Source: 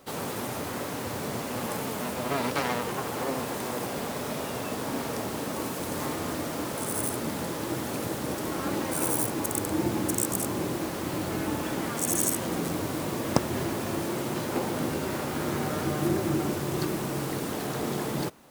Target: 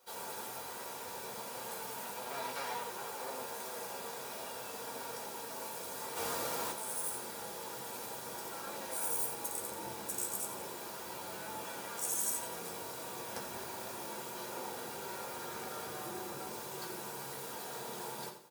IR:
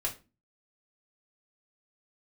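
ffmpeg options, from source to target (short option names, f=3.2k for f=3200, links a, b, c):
-filter_complex "[0:a]asoftclip=type=tanh:threshold=-18dB,aderivative,aecho=1:1:86|172|258|344:0.316|0.114|0.041|0.0148,asplit=3[a][b][c];[a]afade=t=out:st=6.15:d=0.02[d];[b]acontrast=74,afade=t=in:st=6.15:d=0.02,afade=t=out:st=6.7:d=0.02[e];[c]afade=t=in:st=6.7:d=0.02[f];[d][e][f]amix=inputs=3:normalize=0,firequalizer=gain_entry='entry(620,0);entry(2100,-12);entry(12000,-19)':delay=0.05:min_phase=1[g];[1:a]atrim=start_sample=2205,asetrate=61740,aresample=44100[h];[g][h]afir=irnorm=-1:irlink=0,volume=10dB"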